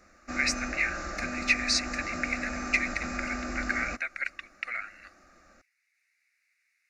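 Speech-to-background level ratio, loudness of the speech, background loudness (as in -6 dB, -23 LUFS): 5.0 dB, -30.5 LUFS, -35.5 LUFS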